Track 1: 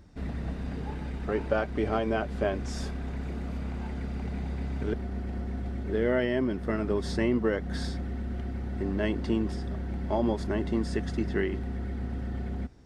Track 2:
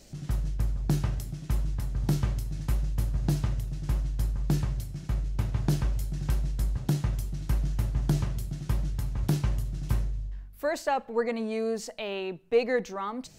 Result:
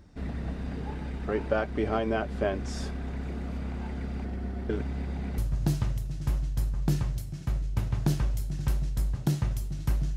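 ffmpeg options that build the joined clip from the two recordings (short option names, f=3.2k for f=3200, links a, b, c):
-filter_complex "[0:a]apad=whole_dur=10.16,atrim=end=10.16,asplit=2[a][b];[a]atrim=end=4.252[c];[b]atrim=start=4.248:end=5.382,asetpts=PTS-STARTPTS,areverse[d];[1:a]atrim=start=2.998:end=7.78[e];[c][d]acrossfade=d=0.004:c1=hsin:c2=hsin[f];[f][e]acrossfade=d=0.004:c1=hsin:c2=hsin"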